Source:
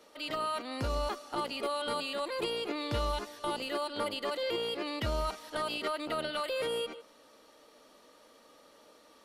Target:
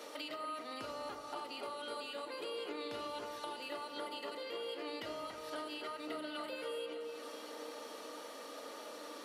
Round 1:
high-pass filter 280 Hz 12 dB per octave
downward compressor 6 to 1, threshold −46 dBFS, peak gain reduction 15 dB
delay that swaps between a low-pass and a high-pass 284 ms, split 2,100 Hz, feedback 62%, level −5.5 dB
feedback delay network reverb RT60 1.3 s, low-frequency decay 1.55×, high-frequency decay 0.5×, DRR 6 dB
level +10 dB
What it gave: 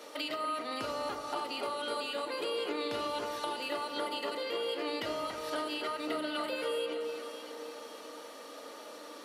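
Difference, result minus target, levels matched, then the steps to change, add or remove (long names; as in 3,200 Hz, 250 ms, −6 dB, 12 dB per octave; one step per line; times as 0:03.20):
downward compressor: peak gain reduction −7.5 dB
change: downward compressor 6 to 1, threshold −55 dBFS, peak gain reduction 22.5 dB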